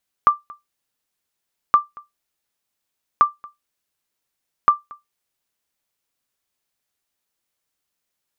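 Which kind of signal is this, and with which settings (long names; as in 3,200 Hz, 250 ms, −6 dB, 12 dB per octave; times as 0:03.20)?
ping with an echo 1,180 Hz, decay 0.17 s, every 1.47 s, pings 4, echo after 0.23 s, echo −25 dB −4 dBFS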